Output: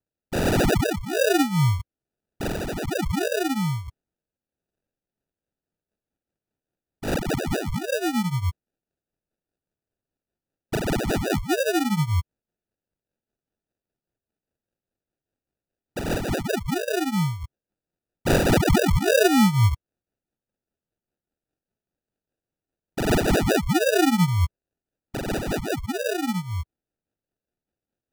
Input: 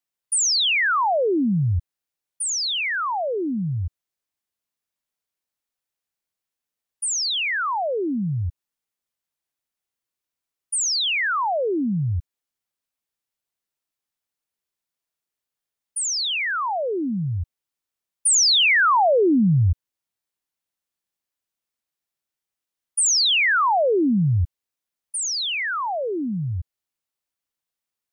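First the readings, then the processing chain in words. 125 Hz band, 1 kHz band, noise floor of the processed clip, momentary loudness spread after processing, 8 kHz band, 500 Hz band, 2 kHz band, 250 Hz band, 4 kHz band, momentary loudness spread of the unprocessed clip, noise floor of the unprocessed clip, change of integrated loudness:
+1.0 dB, -5.5 dB, under -85 dBFS, 13 LU, -11.5 dB, +1.0 dB, -6.0 dB, +1.5 dB, -10.5 dB, 12 LU, under -85 dBFS, -3.0 dB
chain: flange 1.4 Hz, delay 10 ms, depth 8.4 ms, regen +1%; rotary cabinet horn 1.2 Hz, later 5 Hz, at 4.74 s; sample-and-hold 41×; trim +4 dB

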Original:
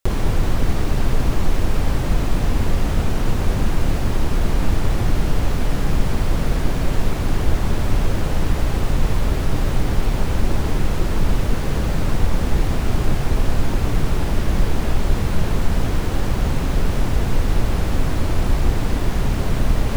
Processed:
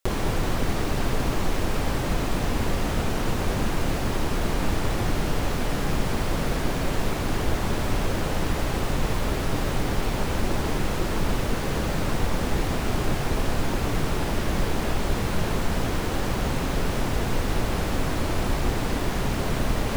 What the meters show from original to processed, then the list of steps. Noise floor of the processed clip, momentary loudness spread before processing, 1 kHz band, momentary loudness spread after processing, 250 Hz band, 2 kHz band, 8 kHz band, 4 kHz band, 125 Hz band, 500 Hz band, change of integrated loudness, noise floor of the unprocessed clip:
-27 dBFS, 1 LU, -0.5 dB, 1 LU, -3.0 dB, 0.0 dB, 0.0 dB, 0.0 dB, -6.5 dB, -1.0 dB, -4.5 dB, -22 dBFS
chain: bass shelf 150 Hz -9.5 dB

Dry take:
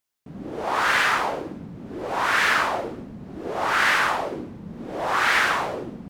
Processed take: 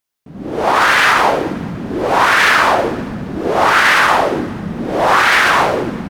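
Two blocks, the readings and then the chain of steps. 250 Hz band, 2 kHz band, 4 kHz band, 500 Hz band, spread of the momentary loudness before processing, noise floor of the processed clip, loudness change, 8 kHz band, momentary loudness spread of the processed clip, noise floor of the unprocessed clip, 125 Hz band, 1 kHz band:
+13.0 dB, +9.5 dB, +9.5 dB, +12.5 dB, 18 LU, -37 dBFS, +9.5 dB, +9.0 dB, 14 LU, -42 dBFS, +13.0 dB, +11.0 dB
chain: peaking EQ 7.4 kHz -2 dB 0.24 oct; peak limiter -15.5 dBFS, peak gain reduction 7 dB; on a send: feedback delay 198 ms, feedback 55%, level -19 dB; on the sum: level rider gain up to 12 dB; trim +2.5 dB

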